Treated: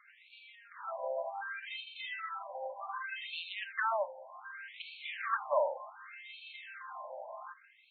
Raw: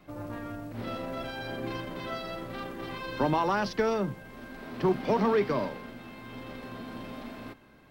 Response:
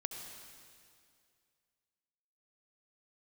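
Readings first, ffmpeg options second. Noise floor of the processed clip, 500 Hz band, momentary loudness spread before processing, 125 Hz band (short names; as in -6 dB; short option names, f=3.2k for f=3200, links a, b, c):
-63 dBFS, -8.0 dB, 17 LU, under -40 dB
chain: -af "afftfilt=real='re*between(b*sr/1024,690*pow(3200/690,0.5+0.5*sin(2*PI*0.66*pts/sr))/1.41,690*pow(3200/690,0.5+0.5*sin(2*PI*0.66*pts/sr))*1.41)':imag='im*between(b*sr/1024,690*pow(3200/690,0.5+0.5*sin(2*PI*0.66*pts/sr))/1.41,690*pow(3200/690,0.5+0.5*sin(2*PI*0.66*pts/sr))*1.41)':win_size=1024:overlap=0.75,volume=4dB"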